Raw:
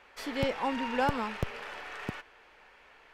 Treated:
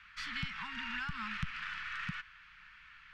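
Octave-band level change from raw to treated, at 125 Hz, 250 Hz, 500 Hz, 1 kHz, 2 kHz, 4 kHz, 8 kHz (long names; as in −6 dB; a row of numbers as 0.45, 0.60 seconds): −6.0 dB, −12.5 dB, below −40 dB, −11.0 dB, −0.5 dB, −1.5 dB, −7.0 dB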